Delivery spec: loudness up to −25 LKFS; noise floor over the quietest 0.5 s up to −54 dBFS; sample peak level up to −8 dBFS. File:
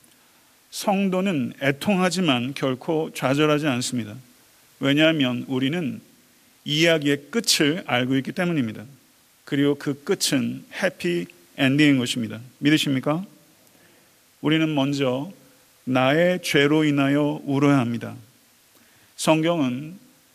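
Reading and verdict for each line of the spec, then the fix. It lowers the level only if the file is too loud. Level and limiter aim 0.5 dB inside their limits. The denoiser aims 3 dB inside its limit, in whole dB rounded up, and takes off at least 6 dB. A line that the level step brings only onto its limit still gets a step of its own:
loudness −22.0 LKFS: out of spec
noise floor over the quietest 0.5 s −57 dBFS: in spec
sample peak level −5.5 dBFS: out of spec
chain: level −3.5 dB

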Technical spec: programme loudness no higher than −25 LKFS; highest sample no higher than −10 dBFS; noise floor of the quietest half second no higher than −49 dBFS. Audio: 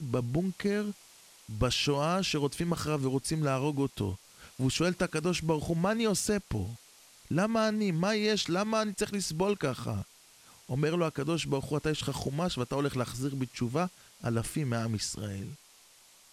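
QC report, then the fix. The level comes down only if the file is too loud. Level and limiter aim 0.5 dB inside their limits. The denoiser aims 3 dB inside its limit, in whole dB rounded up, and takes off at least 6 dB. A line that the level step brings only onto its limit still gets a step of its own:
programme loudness −31.0 LKFS: in spec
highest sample −13.5 dBFS: in spec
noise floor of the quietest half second −59 dBFS: in spec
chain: no processing needed

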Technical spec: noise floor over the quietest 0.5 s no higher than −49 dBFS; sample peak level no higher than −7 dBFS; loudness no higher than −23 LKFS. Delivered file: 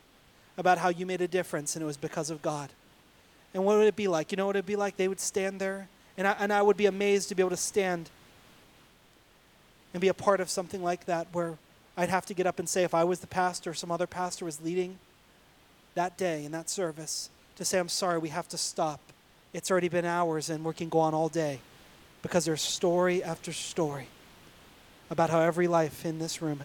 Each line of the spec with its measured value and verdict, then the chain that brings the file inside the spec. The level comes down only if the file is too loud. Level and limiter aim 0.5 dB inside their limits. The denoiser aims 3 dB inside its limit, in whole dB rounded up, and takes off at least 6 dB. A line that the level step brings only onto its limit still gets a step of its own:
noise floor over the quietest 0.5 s −61 dBFS: in spec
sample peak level −11.0 dBFS: in spec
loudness −29.5 LKFS: in spec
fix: no processing needed

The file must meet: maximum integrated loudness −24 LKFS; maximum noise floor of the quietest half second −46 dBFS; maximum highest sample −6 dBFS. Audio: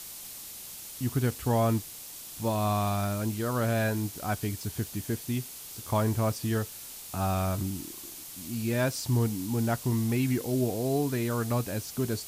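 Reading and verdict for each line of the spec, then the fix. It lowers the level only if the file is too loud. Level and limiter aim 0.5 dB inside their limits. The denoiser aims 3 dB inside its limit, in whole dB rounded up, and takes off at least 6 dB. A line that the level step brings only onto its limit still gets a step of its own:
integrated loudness −30.0 LKFS: in spec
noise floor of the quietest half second −43 dBFS: out of spec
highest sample −15.0 dBFS: in spec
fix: broadband denoise 6 dB, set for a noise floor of −43 dBFS

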